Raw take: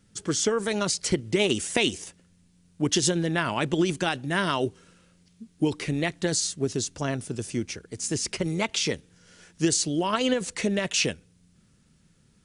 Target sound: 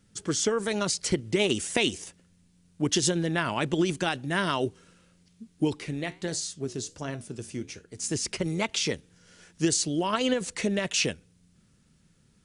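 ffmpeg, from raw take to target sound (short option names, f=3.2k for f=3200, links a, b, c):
-filter_complex "[0:a]asplit=3[a][b][c];[a]afade=t=out:st=5.75:d=0.02[d];[b]flanger=delay=9.5:depth=6.1:regen=-76:speed=1.4:shape=sinusoidal,afade=t=in:st=5.75:d=0.02,afade=t=out:st=7.96:d=0.02[e];[c]afade=t=in:st=7.96:d=0.02[f];[d][e][f]amix=inputs=3:normalize=0,volume=-1.5dB"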